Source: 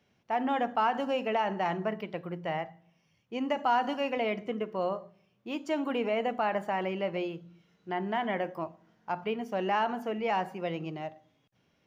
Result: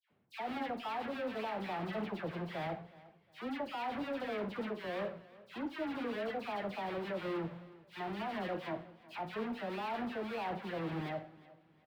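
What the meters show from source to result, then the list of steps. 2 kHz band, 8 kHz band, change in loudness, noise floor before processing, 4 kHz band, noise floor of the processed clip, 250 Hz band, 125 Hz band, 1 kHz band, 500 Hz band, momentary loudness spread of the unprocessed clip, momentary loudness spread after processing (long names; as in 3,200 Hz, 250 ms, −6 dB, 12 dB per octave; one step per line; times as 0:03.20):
−6.5 dB, can't be measured, −8.0 dB, −72 dBFS, −6.5 dB, −67 dBFS, −5.5 dB, −3.0 dB, −10.0 dB, −8.0 dB, 11 LU, 7 LU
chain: each half-wave held at its own peak
high-pass filter 99 Hz 6 dB per octave
high-shelf EQ 2,300 Hz +9 dB
reversed playback
downward compressor 6 to 1, threshold −32 dBFS, peak gain reduction 16.5 dB
reversed playback
leveller curve on the samples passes 1
flanger 0.29 Hz, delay 7.7 ms, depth 7.9 ms, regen −84%
high-frequency loss of the air 450 metres
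all-pass dispersion lows, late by 103 ms, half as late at 1,600 Hz
on a send: repeating echo 363 ms, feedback 32%, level −20 dB
on the sum: level +1 dB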